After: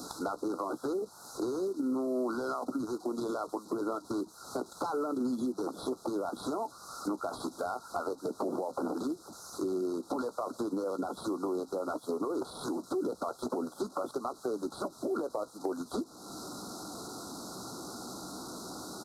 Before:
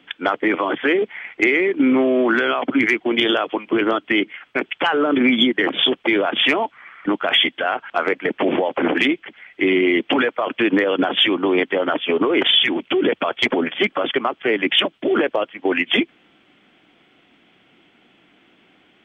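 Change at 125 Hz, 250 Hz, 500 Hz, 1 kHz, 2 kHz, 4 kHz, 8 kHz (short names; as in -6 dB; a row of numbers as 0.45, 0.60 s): -11.5 dB, -14.5 dB, -14.0 dB, -13.5 dB, -30.5 dB, -29.0 dB, n/a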